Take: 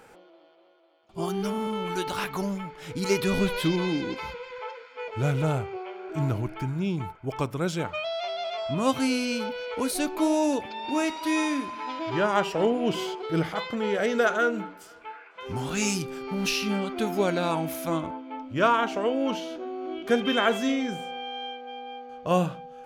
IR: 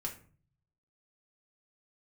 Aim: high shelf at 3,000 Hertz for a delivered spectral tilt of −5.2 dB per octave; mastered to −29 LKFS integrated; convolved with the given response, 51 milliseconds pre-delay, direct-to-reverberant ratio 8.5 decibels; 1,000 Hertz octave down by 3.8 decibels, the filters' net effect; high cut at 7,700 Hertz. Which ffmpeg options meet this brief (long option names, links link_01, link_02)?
-filter_complex "[0:a]lowpass=7700,equalizer=frequency=1000:width_type=o:gain=-4.5,highshelf=frequency=3000:gain=-4,asplit=2[link_01][link_02];[1:a]atrim=start_sample=2205,adelay=51[link_03];[link_02][link_03]afir=irnorm=-1:irlink=0,volume=-8.5dB[link_04];[link_01][link_04]amix=inputs=2:normalize=0,volume=-1dB"